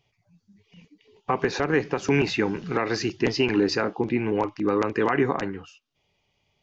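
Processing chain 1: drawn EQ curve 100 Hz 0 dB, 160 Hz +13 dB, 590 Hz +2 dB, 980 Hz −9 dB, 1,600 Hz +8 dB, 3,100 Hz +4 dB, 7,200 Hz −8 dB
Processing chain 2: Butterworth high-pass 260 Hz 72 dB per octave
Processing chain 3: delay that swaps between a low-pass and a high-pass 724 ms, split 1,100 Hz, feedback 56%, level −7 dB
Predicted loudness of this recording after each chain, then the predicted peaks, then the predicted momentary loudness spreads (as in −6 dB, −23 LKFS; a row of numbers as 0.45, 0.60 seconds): −18.5, −25.5, −24.5 LKFS; −1.5, −10.5, −9.0 dBFS; 7, 6, 9 LU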